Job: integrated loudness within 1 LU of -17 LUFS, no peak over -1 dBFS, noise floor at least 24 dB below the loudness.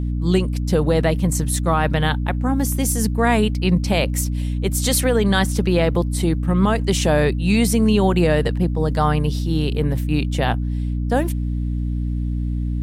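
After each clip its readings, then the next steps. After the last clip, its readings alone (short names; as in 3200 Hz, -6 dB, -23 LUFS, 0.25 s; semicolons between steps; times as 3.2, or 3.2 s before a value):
hum 60 Hz; harmonics up to 300 Hz; hum level -20 dBFS; loudness -19.5 LUFS; peak -5.5 dBFS; loudness target -17.0 LUFS
-> de-hum 60 Hz, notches 5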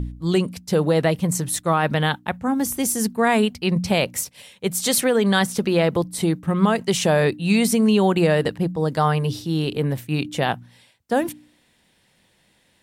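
hum none; loudness -21.0 LUFS; peak -6.5 dBFS; loudness target -17.0 LUFS
-> gain +4 dB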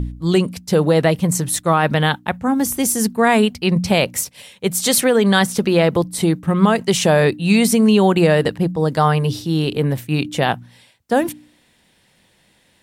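loudness -17.0 LUFS; peak -2.5 dBFS; noise floor -58 dBFS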